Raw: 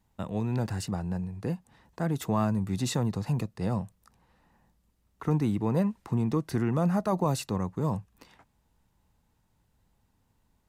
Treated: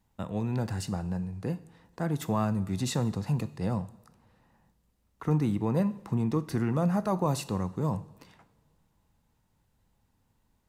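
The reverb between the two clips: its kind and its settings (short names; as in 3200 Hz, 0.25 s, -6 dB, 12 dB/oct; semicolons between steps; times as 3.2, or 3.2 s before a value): two-slope reverb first 0.66 s, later 2.5 s, from -18 dB, DRR 13 dB; gain -1 dB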